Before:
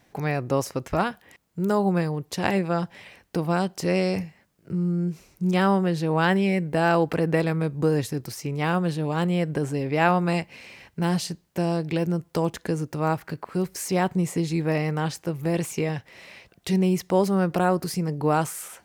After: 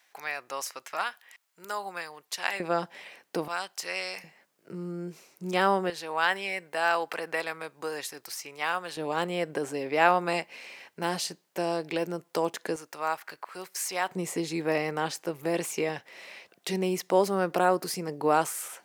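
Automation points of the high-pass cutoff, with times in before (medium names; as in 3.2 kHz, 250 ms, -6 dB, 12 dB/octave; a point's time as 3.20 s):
1.2 kHz
from 2.60 s 360 Hz
from 3.48 s 1.2 kHz
from 4.24 s 390 Hz
from 5.90 s 880 Hz
from 8.97 s 410 Hz
from 12.76 s 870 Hz
from 14.09 s 350 Hz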